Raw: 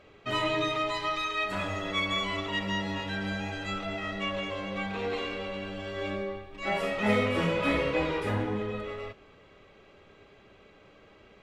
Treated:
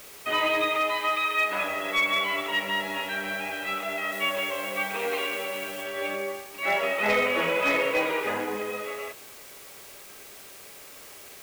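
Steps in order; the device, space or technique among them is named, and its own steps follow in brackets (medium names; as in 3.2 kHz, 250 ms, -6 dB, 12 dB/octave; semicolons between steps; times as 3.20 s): drive-through speaker (band-pass 410–3200 Hz; peaking EQ 2.4 kHz +5 dB 0.55 oct; hard clipper -22 dBFS, distortion -22 dB; white noise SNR 18 dB); 4.12–5.84 s: treble shelf 6.3 kHz +5.5 dB; trim +4.5 dB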